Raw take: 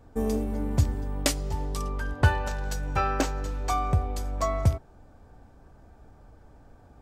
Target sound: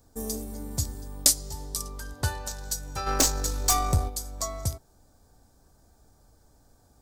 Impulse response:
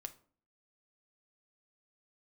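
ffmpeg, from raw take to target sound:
-filter_complex "[0:a]aexciter=amount=7.8:drive=4:freq=3.9k,asplit=3[a][b][c];[a]afade=t=out:st=3.06:d=0.02[d];[b]aeval=exprs='0.668*(cos(1*acos(clip(val(0)/0.668,-1,1)))-cos(1*PI/2))+0.237*(cos(5*acos(clip(val(0)/0.668,-1,1)))-cos(5*PI/2))+0.335*(cos(6*acos(clip(val(0)/0.668,-1,1)))-cos(6*PI/2))+0.299*(cos(8*acos(clip(val(0)/0.668,-1,1)))-cos(8*PI/2))':c=same,afade=t=in:st=3.06:d=0.02,afade=t=out:st=4.08:d=0.02[e];[c]afade=t=in:st=4.08:d=0.02[f];[d][e][f]amix=inputs=3:normalize=0,volume=-8dB"

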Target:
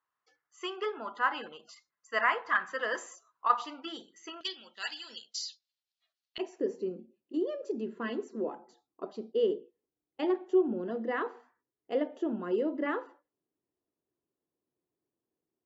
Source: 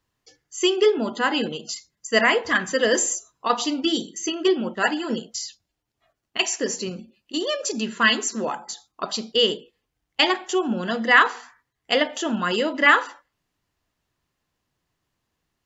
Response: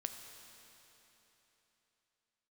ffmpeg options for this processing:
-af "asetnsamples=n=441:p=0,asendcmd='4.41 bandpass f 4100;6.38 bandpass f 370',bandpass=f=1.2k:t=q:w=2.5:csg=0,volume=-1.5dB"

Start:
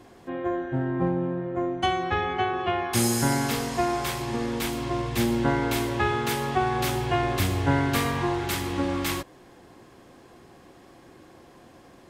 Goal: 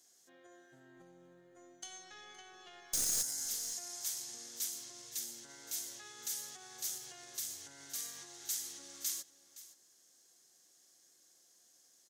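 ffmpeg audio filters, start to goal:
-filter_complex "[0:a]alimiter=limit=-19.5dB:level=0:latency=1:release=91,aderivative,asettb=1/sr,asplit=3[a][b][c];[a]atrim=end=0.964[d];[b]atrim=start=0.96:end=3.46,asetpts=PTS-STARTPTS,afade=t=in:d=0.004:c=qsin,afade=t=out:st=2.496:d=0.004:c=qsin,aeval=exprs='0.0841*(cos(1*acos(clip(val(0)/0.0841,-1,1)))-cos(1*PI/2))+0.0299*(cos(2*acos(clip(val(0)/0.0841,-1,1)))-cos(2*PI/2))+0.0376*(cos(6*acos(clip(val(0)/0.0841,-1,1)))-cos(6*PI/2))+0.0266*(cos(8*acos(clip(val(0)/0.0841,-1,1)))-cos(8*PI/2))':c=same[e];[c]atrim=start=3.456[f];[d][e]acrossfade=d=0.004:c1=hsin:c2=qsin[g];[g][f]acrossfade=d=0.004:c1=qsin:c2=hsin,equalizer=f=160:t=o:w=0.67:g=3,equalizer=f=1k:t=o:w=0.67:g=-10,equalizer=f=2.5k:t=o:w=0.67:g=-9,equalizer=f=6.3k:t=o:w=0.67:g=12,aecho=1:1:517:0.15,volume=-5.5dB"

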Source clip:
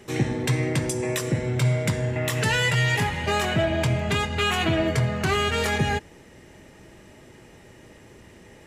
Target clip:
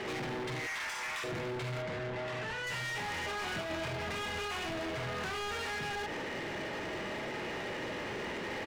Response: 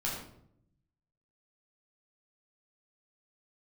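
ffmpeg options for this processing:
-filter_complex "[0:a]asplit=2[a][b];[b]highpass=f=720:p=1,volume=23dB,asoftclip=type=tanh:threshold=-9.5dB[c];[a][c]amix=inputs=2:normalize=0,lowpass=f=2.6k:p=1,volume=-6dB,asettb=1/sr,asplit=3[d][e][f];[d]atrim=end=0.594[g];[e]atrim=start=0.59:end=1.24,asetpts=PTS-STARTPTS,afade=t=in:d=0.004:c=qsin,afade=t=out:st=0.646:d=0.004:c=qsin,highpass=f=1k:w=0.5412,highpass=f=1k:w=1.3066[h];[f]atrim=start=1.236[i];[g][h]acrossfade=d=0.004:c1=hsin:c2=qsin[j];[j][i]acrossfade=d=0.004:c1=qsin:c2=hsin,aecho=1:1:46|73:0.596|0.447,alimiter=level_in=1dB:limit=-24dB:level=0:latency=1:release=49,volume=-1dB,lowpass=4.5k,asoftclip=type=hard:threshold=-35.5dB,asettb=1/sr,asplit=3[k][l][m];[k]atrim=end=1.824[n];[l]atrim=start=1.82:end=2.67,asetpts=PTS-STARTPTS,afade=t=in:d=0.004:c=qsin,afade=t=out:st=0.846:d=0.004:c=qsin,aemphasis=mode=reproduction:type=50kf[o];[m]atrim=start=2.666[p];[n][o]acrossfade=d=0.004:c1=hsin:c2=qsin[q];[q][p]acrossfade=d=0.004:c1=qsin:c2=hsin,asettb=1/sr,asplit=3[r][s][t];[r]atrim=end=3.394[u];[s]atrim=start=3.39:end=3.88,asetpts=PTS-STARTPTS,afade=t=in:d=0.004:c=qsin,afade=t=out:st=0.486:d=0.004:c=qsin,asplit=2[v][w];[w]adelay=25,volume=-5dB[x];[v][x]amix=inputs=2:normalize=0,atrim=end_sample=21609[y];[t]atrim=start=3.876[z];[u][y]acrossfade=d=0.004:c1=hsin:c2=qsin[aa];[aa][z]acrossfade=d=0.004:c1=qsin:c2=hsin"

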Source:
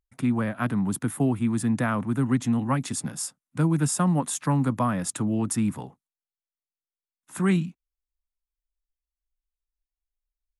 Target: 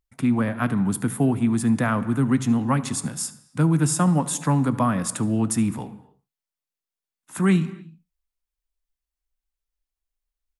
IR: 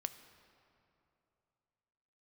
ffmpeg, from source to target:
-filter_complex "[0:a]aecho=1:1:74:0.0841,asplit=2[a][b];[1:a]atrim=start_sample=2205,afade=t=out:st=0.36:d=0.01,atrim=end_sample=16317[c];[b][c]afir=irnorm=-1:irlink=0,volume=9dB[d];[a][d]amix=inputs=2:normalize=0,volume=-7.5dB"

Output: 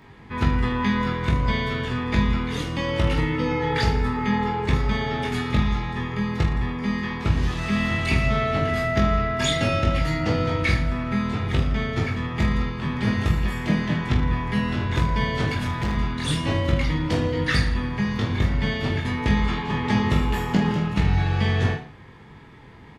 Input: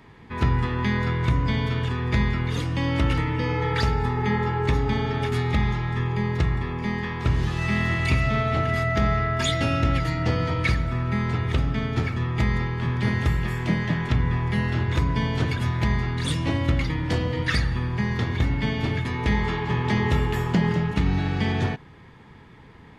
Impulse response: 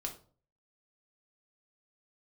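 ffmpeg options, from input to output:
-filter_complex "[0:a]aecho=1:1:20|45|76.25|115.3|164.1:0.631|0.398|0.251|0.158|0.1,asettb=1/sr,asplit=3[a][b][c];[a]atrim=end=15.574[d];[b]atrim=start=15.57:end=15.97,asetpts=PTS-STARTPTS,afade=t=in:d=0.004:c=qsin,afade=t=out:st=0.396:d=0.004:c=qsin,asoftclip=type=hard:threshold=-21dB[e];[c]atrim=start=15.966[f];[d][e]acrossfade=d=0.004:c1=hsin:c2=qsin[g];[g][f]acrossfade=d=0.004:c1=qsin:c2=hsin"

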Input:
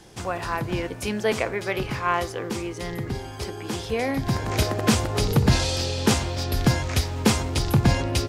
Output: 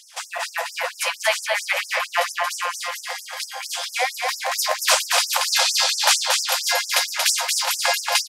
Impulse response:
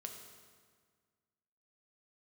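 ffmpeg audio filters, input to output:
-af "aeval=exprs='0.473*(cos(1*acos(clip(val(0)/0.473,-1,1)))-cos(1*PI/2))+0.00335*(cos(8*acos(clip(val(0)/0.473,-1,1)))-cos(8*PI/2))':c=same,aecho=1:1:230|414|561.2|679|773.2:0.631|0.398|0.251|0.158|0.1,afftfilt=real='re*gte(b*sr/1024,490*pow(5200/490,0.5+0.5*sin(2*PI*4.4*pts/sr)))':imag='im*gte(b*sr/1024,490*pow(5200/490,0.5+0.5*sin(2*PI*4.4*pts/sr)))':win_size=1024:overlap=0.75,volume=8.5dB"

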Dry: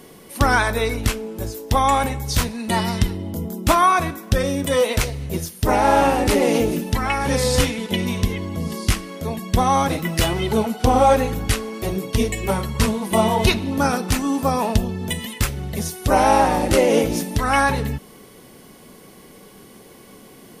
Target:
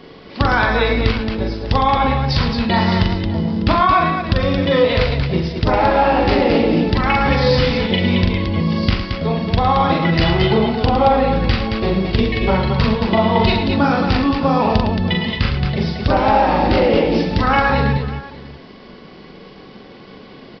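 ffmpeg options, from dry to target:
-af "acompressor=threshold=-19dB:ratio=6,aresample=11025,aeval=exprs='sgn(val(0))*max(abs(val(0))-0.00188,0)':c=same,aresample=44100,aecho=1:1:42|109|223|599:0.668|0.376|0.531|0.141,volume=6dB"

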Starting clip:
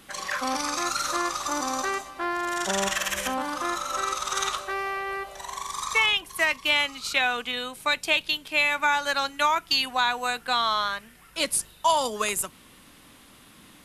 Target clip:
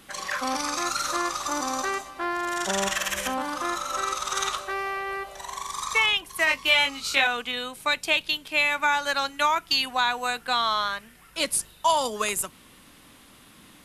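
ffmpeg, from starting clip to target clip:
-filter_complex "[0:a]asettb=1/sr,asplit=3[a][b][c];[a]atrim=end=6.454[d];[b]atrim=start=6.45:end=7.27,asetpts=PTS-STARTPTS,afade=t=in:d=0.004:c=qsin,afade=t=out:st=0.816:d=0.004:c=qsin,asplit=2[e][f];[f]adelay=22,volume=-2dB[g];[e][g]amix=inputs=2:normalize=0,atrim=end_sample=36162[h];[c]atrim=start=7.266[i];[d][h]acrossfade=d=0.004:c1=hsin:c2=qsin[j];[j][i]acrossfade=d=0.004:c1=qsin:c2=hsin"

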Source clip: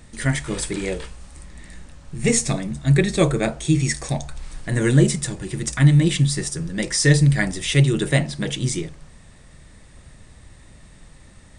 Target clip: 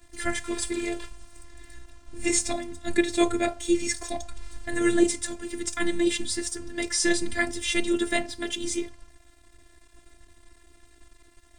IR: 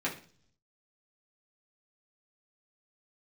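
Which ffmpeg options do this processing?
-af "aeval=exprs='sgn(val(0))*max(abs(val(0))-0.00335,0)':c=same,afftfilt=real='hypot(re,im)*cos(PI*b)':imag='0':win_size=512:overlap=0.75"

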